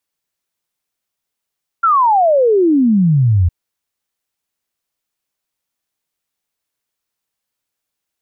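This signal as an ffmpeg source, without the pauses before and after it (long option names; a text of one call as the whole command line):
ffmpeg -f lavfi -i "aevalsrc='0.376*clip(min(t,1.66-t)/0.01,0,1)*sin(2*PI*1400*1.66/log(82/1400)*(exp(log(82/1400)*t/1.66)-1))':duration=1.66:sample_rate=44100" out.wav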